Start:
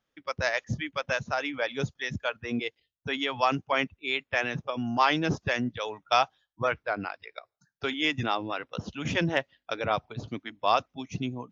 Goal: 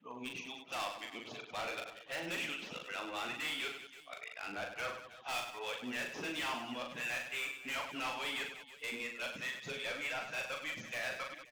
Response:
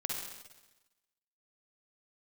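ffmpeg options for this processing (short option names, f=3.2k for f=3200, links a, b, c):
-filter_complex "[0:a]areverse,equalizer=f=2.7k:t=o:w=1.1:g=10.5,aresample=16000,asoftclip=type=tanh:threshold=-16.5dB,aresample=44100,highpass=390,asoftclip=type=hard:threshold=-28.5dB,alimiter=level_in=13dB:limit=-24dB:level=0:latency=1:release=371,volume=-13dB,asplit=2[a][b];[b]aecho=0:1:40|100|190|325|527.5:0.631|0.398|0.251|0.158|0.1[c];[a][c]amix=inputs=2:normalize=0,adynamicequalizer=threshold=0.00282:dfrequency=4800:dqfactor=0.7:tfrequency=4800:tqfactor=0.7:attack=5:release=100:ratio=0.375:range=2.5:mode=cutabove:tftype=highshelf"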